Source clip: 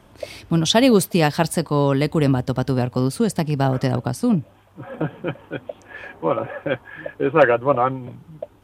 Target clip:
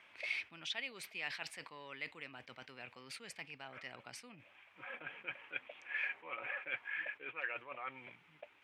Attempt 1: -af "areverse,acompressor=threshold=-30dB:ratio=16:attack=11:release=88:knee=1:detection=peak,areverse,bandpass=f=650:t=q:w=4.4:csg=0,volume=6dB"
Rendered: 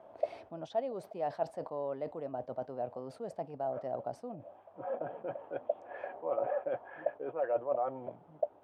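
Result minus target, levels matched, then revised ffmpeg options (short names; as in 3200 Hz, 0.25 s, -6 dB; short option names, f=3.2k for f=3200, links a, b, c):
2000 Hz band -18.0 dB
-af "areverse,acompressor=threshold=-30dB:ratio=16:attack=11:release=88:knee=1:detection=peak,areverse,bandpass=f=2.3k:t=q:w=4.4:csg=0,volume=6dB"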